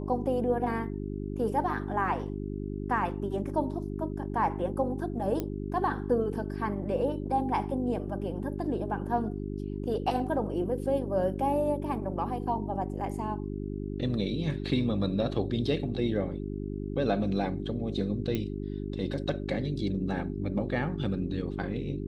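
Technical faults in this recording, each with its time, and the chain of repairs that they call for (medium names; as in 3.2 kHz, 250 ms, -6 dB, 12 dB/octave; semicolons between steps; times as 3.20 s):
hum 50 Hz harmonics 8 -35 dBFS
5.40 s: pop -18 dBFS
18.35 s: pop -18 dBFS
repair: de-click; de-hum 50 Hz, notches 8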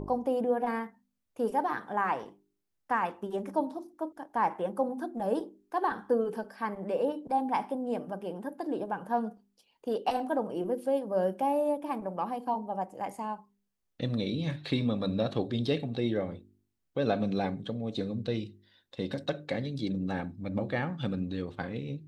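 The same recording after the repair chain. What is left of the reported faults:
5.40 s: pop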